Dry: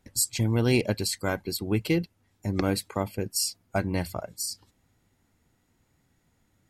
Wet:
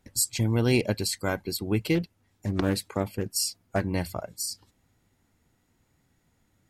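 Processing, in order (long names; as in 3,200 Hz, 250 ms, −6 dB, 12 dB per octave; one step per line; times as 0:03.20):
0:01.95–0:03.81: highs frequency-modulated by the lows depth 0.35 ms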